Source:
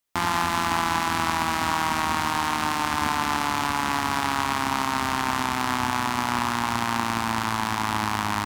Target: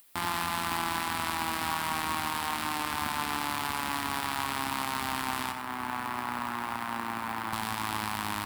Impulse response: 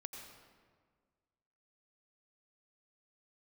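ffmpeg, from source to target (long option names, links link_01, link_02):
-filter_complex "[0:a]acompressor=mode=upward:threshold=-47dB:ratio=2.5,highshelf=frequency=3400:gain=9,asettb=1/sr,asplit=3[link_01][link_02][link_03];[link_01]atrim=end=5.514[link_04];[link_02]atrim=start=5.51:end=7.53,asetpts=PTS-STARTPTS,afade=type=in:duration=0.004:curve=qsin,afade=type=out:start_time=2.016:duration=0.004:curve=qsin,acrossover=split=180|960|2300[link_05][link_06][link_07][link_08];[link_05]acompressor=threshold=-49dB:ratio=4[link_09];[link_06]acompressor=threshold=-33dB:ratio=4[link_10];[link_07]acompressor=threshold=-31dB:ratio=4[link_11];[link_08]acompressor=threshold=-44dB:ratio=4[link_12];[link_09][link_10][link_11][link_12]amix=inputs=4:normalize=0[link_13];[link_03]atrim=start=7.526[link_14];[link_04][link_13]acrossfade=duration=0.004:curve1=hsin:curve2=qsin[link_15];[link_15][link_14]acrossfade=duration=0.004:curve1=qsin:curve2=hsin,acrusher=bits=3:mode=log:mix=0:aa=0.000001,alimiter=limit=-7.5dB:level=0:latency=1:release=408,equalizer=frequency=6300:width_type=o:width=0.56:gain=-9.5[link_16];[1:a]atrim=start_sample=2205,atrim=end_sample=4410[link_17];[link_16][link_17]afir=irnorm=-1:irlink=0,volume=1.5dB"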